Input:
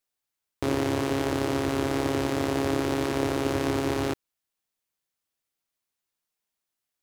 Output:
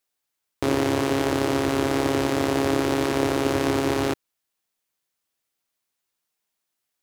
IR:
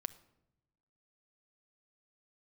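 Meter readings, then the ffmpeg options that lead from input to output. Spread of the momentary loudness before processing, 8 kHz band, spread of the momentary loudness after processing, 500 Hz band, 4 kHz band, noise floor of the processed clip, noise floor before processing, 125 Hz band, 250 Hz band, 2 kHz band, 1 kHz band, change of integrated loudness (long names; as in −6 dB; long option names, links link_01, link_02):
3 LU, +4.5 dB, 3 LU, +4.0 dB, +4.5 dB, −81 dBFS, −85 dBFS, +2.0 dB, +3.5 dB, +4.5 dB, +4.5 dB, +4.0 dB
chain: -af "lowshelf=frequency=130:gain=-5,volume=4.5dB"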